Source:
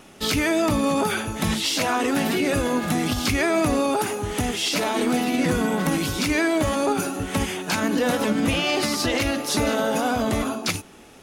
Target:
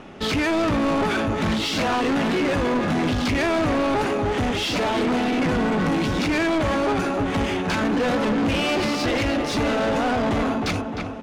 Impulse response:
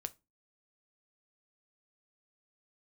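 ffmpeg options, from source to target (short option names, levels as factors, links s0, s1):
-filter_complex "[0:a]asplit=2[s0][s1];[s1]adelay=307,lowpass=f=3600:p=1,volume=0.316,asplit=2[s2][s3];[s3]adelay=307,lowpass=f=3600:p=1,volume=0.52,asplit=2[s4][s5];[s5]adelay=307,lowpass=f=3600:p=1,volume=0.52,asplit=2[s6][s7];[s7]adelay=307,lowpass=f=3600:p=1,volume=0.52,asplit=2[s8][s9];[s9]adelay=307,lowpass=f=3600:p=1,volume=0.52,asplit=2[s10][s11];[s11]adelay=307,lowpass=f=3600:p=1,volume=0.52[s12];[s0][s2][s4][s6][s8][s10][s12]amix=inputs=7:normalize=0,asoftclip=type=tanh:threshold=0.0501,adynamicsmooth=sensitivity=2.5:basefreq=2900,volume=2.37"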